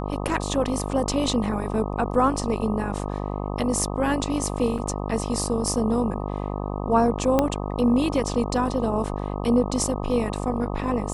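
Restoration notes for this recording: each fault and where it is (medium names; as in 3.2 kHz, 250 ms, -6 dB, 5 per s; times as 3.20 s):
buzz 50 Hz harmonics 25 -29 dBFS
4.78–4.79 s: dropout 6.1 ms
7.39 s: pop -7 dBFS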